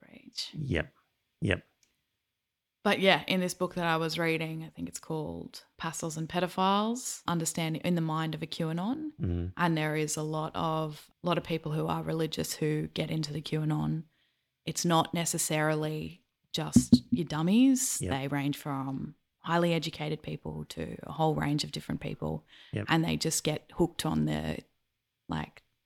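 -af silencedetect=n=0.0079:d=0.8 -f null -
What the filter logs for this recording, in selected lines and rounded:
silence_start: 1.59
silence_end: 2.85 | silence_duration: 1.26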